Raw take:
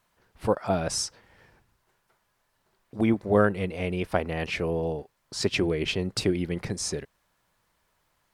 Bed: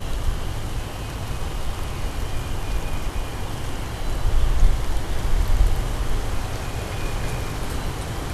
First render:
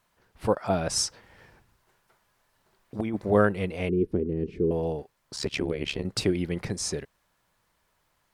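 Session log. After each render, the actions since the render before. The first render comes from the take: 0.96–3.32 negative-ratio compressor -27 dBFS; 3.89–4.71 EQ curve 120 Hz 0 dB, 410 Hz +9 dB, 640 Hz -24 dB; 5.36–6.05 AM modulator 71 Hz, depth 80%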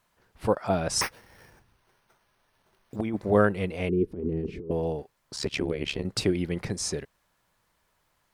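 1.01–2.96 careless resampling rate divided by 6×, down none, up hold; 4.07–4.7 negative-ratio compressor -30 dBFS, ratio -0.5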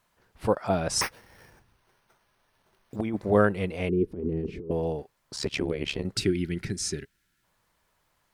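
6.16–7.44 spectral gain 430–1300 Hz -14 dB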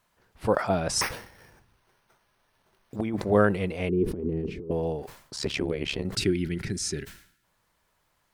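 sustainer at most 100 dB/s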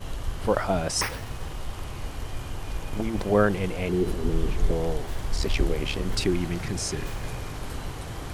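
add bed -7 dB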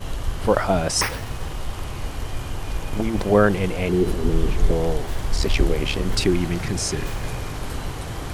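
gain +5 dB; limiter -3 dBFS, peak gain reduction 1 dB

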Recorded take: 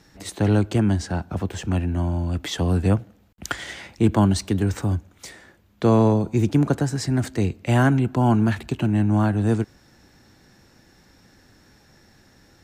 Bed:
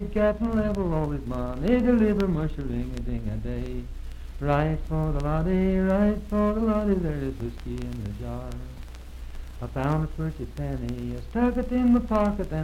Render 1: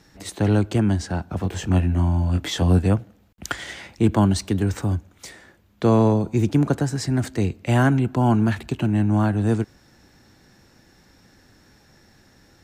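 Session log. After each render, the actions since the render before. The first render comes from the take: 1.41–2.79 doubler 22 ms -3 dB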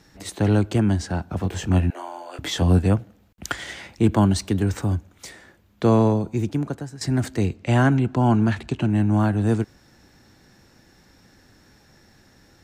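1.9–2.39 inverse Chebyshev high-pass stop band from 210 Hz; 5.92–7.01 fade out, to -15 dB; 7.54–8.9 LPF 8300 Hz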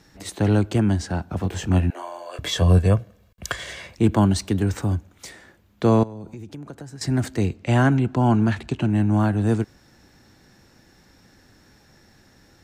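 2.02–3.96 comb 1.8 ms, depth 56%; 6.03–6.91 compressor 16:1, threshold -32 dBFS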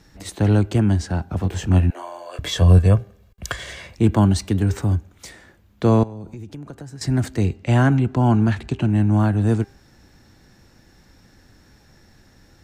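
low shelf 84 Hz +9 dB; de-hum 398.9 Hz, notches 7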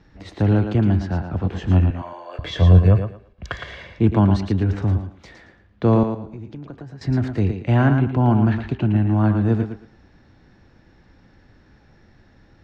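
air absorption 230 m; thinning echo 0.113 s, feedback 24%, high-pass 170 Hz, level -6.5 dB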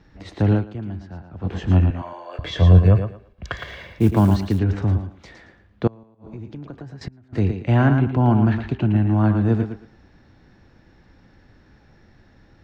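0.53–1.51 dip -13 dB, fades 0.13 s; 3.57–4.59 short-mantissa float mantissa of 4-bit; 5.87–7.33 flipped gate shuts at -18 dBFS, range -30 dB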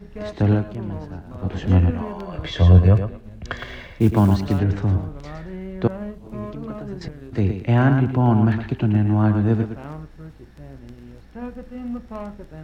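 add bed -10 dB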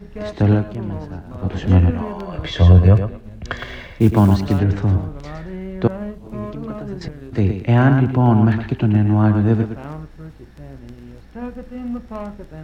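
gain +3 dB; limiter -1 dBFS, peak gain reduction 2.5 dB

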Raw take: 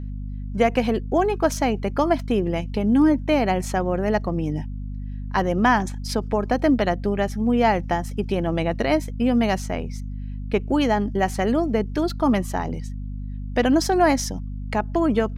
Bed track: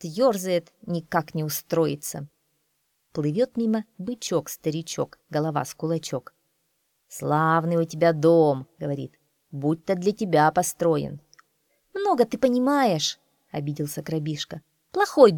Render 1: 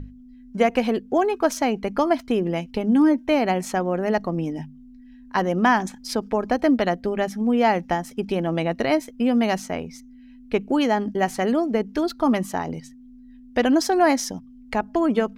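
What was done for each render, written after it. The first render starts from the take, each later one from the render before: notches 50/100/150/200 Hz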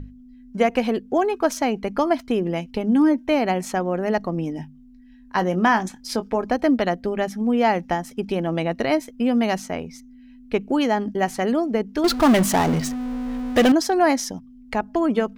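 4.61–6.42 doubler 22 ms -11.5 dB; 12.04–13.72 power-law curve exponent 0.5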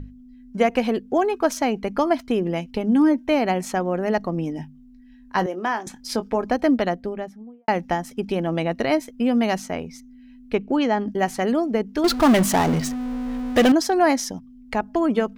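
5.46–5.87 ladder high-pass 260 Hz, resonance 30%; 6.7–7.68 studio fade out; 10.55–11.08 air absorption 84 m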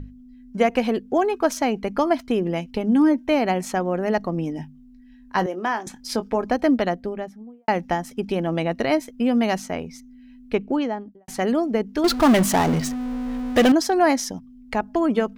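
10.58–11.28 studio fade out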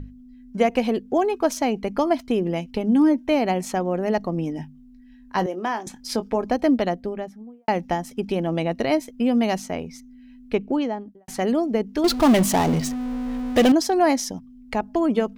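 dynamic EQ 1500 Hz, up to -5 dB, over -40 dBFS, Q 1.6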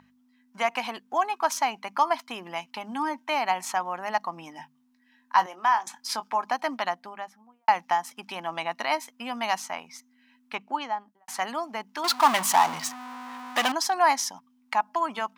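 HPF 250 Hz 12 dB/oct; resonant low shelf 660 Hz -13 dB, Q 3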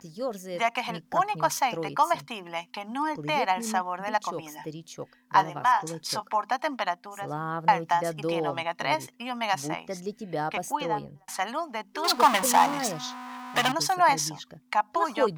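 add bed track -11.5 dB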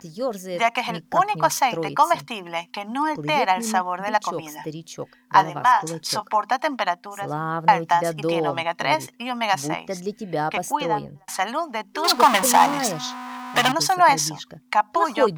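gain +5.5 dB; limiter -3 dBFS, peak gain reduction 2 dB

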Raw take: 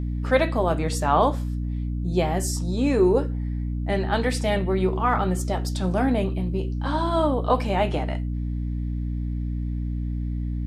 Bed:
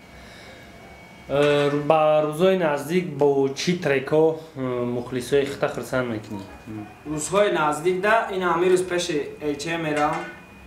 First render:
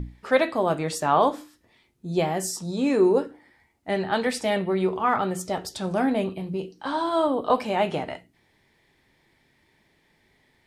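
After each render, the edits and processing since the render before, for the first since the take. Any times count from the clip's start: notches 60/120/180/240/300 Hz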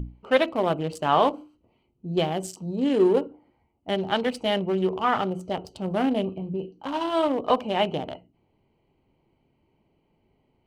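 Wiener smoothing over 25 samples; bell 3000 Hz +12 dB 0.22 oct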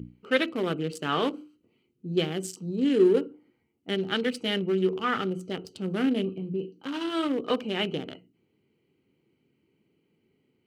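HPF 150 Hz 12 dB/oct; band shelf 780 Hz -13 dB 1.1 oct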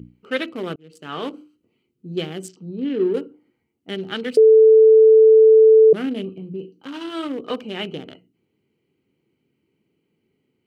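0.76–1.35 fade in; 2.48–3.14 air absorption 210 m; 4.37–5.93 bleep 440 Hz -7 dBFS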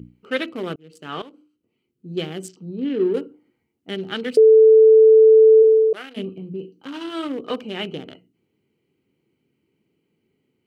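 1.22–2.27 fade in, from -17.5 dB; 5.62–6.16 HPF 350 Hz -> 1100 Hz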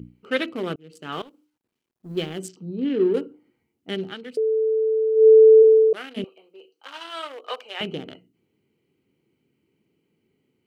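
1.12–2.39 G.711 law mismatch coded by A; 4.04–5.27 dip -11 dB, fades 0.12 s; 6.24–7.81 HPF 590 Hz 24 dB/oct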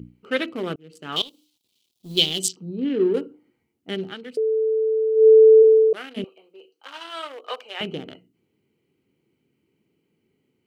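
1.16–2.53 resonant high shelf 2400 Hz +14 dB, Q 3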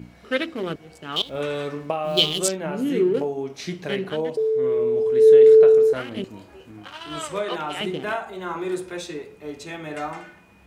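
add bed -8.5 dB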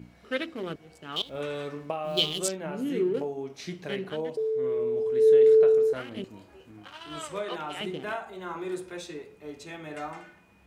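gain -6.5 dB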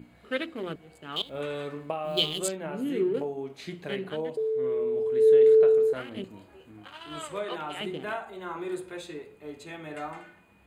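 bell 5600 Hz -15 dB 0.24 oct; notches 60/120/180 Hz

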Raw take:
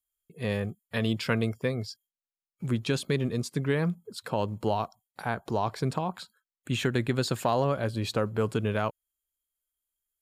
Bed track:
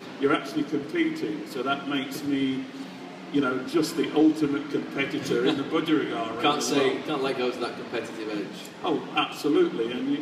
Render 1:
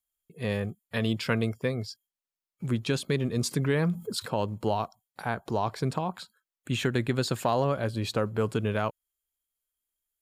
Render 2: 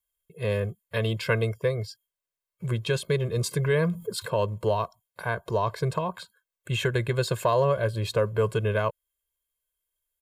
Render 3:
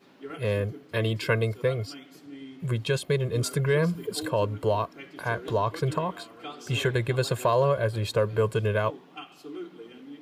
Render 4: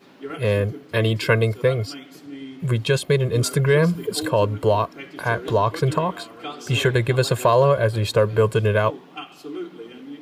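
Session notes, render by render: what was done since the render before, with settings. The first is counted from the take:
3.36–4.26 fast leveller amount 50%
bell 5400 Hz -4.5 dB 0.93 oct; comb 1.9 ms, depth 92%
add bed track -17 dB
gain +6.5 dB

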